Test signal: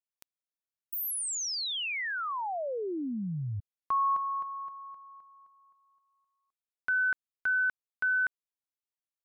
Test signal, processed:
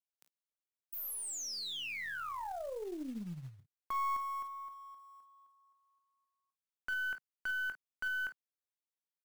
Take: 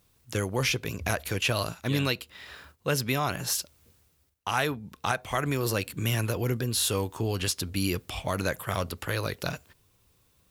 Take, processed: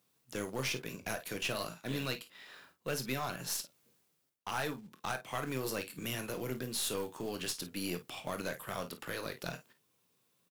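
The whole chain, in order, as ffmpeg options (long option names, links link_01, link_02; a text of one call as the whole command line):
ffmpeg -i in.wav -af "highpass=frequency=150:width=0.5412,highpass=frequency=150:width=1.3066,asoftclip=type=tanh:threshold=-18dB,aecho=1:1:23|39|52:0.266|0.178|0.224,acrusher=bits=5:mode=log:mix=0:aa=0.000001,aeval=exprs='0.251*(cos(1*acos(clip(val(0)/0.251,-1,1)))-cos(1*PI/2))+0.0355*(cos(4*acos(clip(val(0)/0.251,-1,1)))-cos(4*PI/2))':channel_layout=same,volume=-8dB" out.wav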